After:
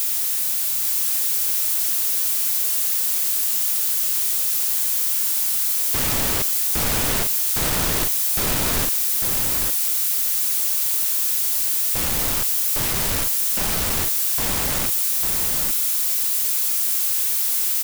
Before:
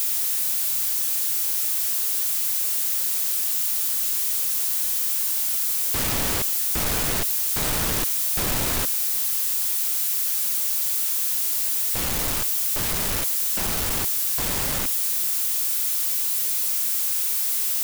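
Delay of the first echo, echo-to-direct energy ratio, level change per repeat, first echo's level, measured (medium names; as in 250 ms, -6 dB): 849 ms, -5.0 dB, no regular repeats, -5.0 dB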